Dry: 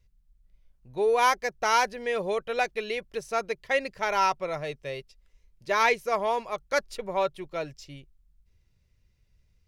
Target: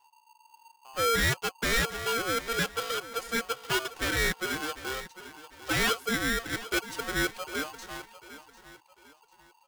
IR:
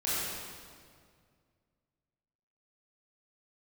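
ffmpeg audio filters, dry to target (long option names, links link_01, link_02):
-filter_complex "[0:a]asoftclip=type=tanh:threshold=-21dB,asplit=2[link_01][link_02];[link_02]aecho=0:1:748|1496|2244:0.178|0.0622|0.0218[link_03];[link_01][link_03]amix=inputs=2:normalize=0,aeval=exprs='val(0)*sgn(sin(2*PI*920*n/s))':channel_layout=same"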